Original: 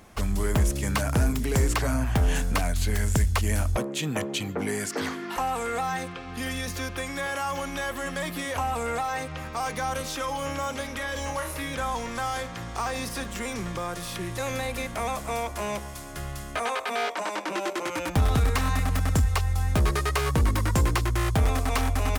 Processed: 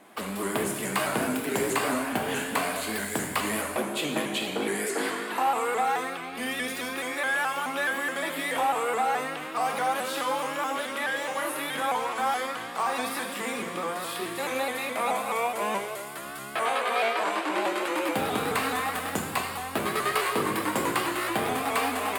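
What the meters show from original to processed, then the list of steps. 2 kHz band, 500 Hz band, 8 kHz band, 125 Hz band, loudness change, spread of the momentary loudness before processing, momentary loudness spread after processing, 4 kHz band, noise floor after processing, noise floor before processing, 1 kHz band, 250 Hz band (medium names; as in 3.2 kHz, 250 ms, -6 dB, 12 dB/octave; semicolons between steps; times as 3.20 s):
+3.5 dB, +2.0 dB, -0.5 dB, -16.5 dB, -0.5 dB, 8 LU, 5 LU, +1.5 dB, -36 dBFS, -38 dBFS, +3.0 dB, -1.0 dB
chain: Bessel high-pass 280 Hz, order 4; peaking EQ 5.9 kHz -12.5 dB 0.46 oct; gated-style reverb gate 460 ms falling, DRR -0.5 dB; vibrato with a chosen wave saw up 4.7 Hz, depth 100 cents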